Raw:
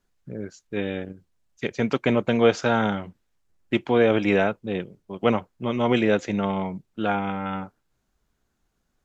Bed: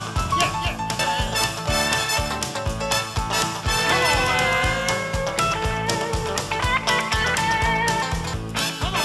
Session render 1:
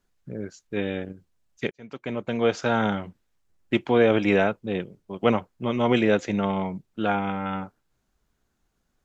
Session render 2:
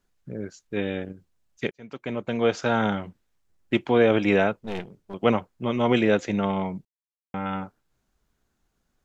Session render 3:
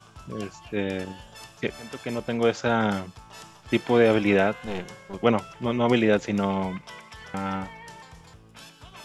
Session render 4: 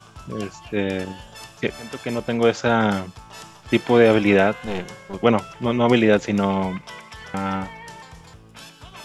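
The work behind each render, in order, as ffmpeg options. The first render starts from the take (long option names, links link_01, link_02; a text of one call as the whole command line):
ffmpeg -i in.wav -filter_complex "[0:a]asplit=2[link_01][link_02];[link_01]atrim=end=1.71,asetpts=PTS-STARTPTS,afade=type=out:start_time=1.706:duration=0.004:curve=hsin[link_03];[link_02]atrim=start=1.71,asetpts=PTS-STARTPTS,afade=type=in:duration=1.22[link_04];[link_03][link_04]concat=n=2:v=0:a=1" out.wav
ffmpeg -i in.wav -filter_complex "[0:a]asettb=1/sr,asplit=3[link_01][link_02][link_03];[link_01]atrim=end=4.584[link_04];[link_02]atrim=start=4.58:end=5.14,asetpts=PTS-STARTPTS,afade=type=in:duration=0.004:curve=qsin,afade=type=out:start_time=0.556:duration=0.004:curve=qsin,aeval=exprs='clip(val(0),-1,0.0106)':channel_layout=same[link_05];[link_03]atrim=start=5.136[link_06];[link_04][link_05]acrossfade=duration=0.004:curve1=hsin:curve2=qsin[link_07];[link_07][link_06]acrossfade=duration=0.004:curve1=qsin:curve2=hsin,asplit=3[link_08][link_09][link_10];[link_08]atrim=end=6.85,asetpts=PTS-STARTPTS,afade=type=out:start_time=6.846:duration=0.004:curve=hsin[link_11];[link_09]atrim=start=6.85:end=7.34,asetpts=PTS-STARTPTS,volume=0[link_12];[link_10]atrim=start=7.34,asetpts=PTS-STARTPTS,afade=type=in:duration=0.004:curve=hsin[link_13];[link_11][link_12][link_13]concat=n=3:v=0:a=1" out.wav
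ffmpeg -i in.wav -i bed.wav -filter_complex "[1:a]volume=-22.5dB[link_01];[0:a][link_01]amix=inputs=2:normalize=0" out.wav
ffmpeg -i in.wav -af "volume=4.5dB,alimiter=limit=-2dB:level=0:latency=1" out.wav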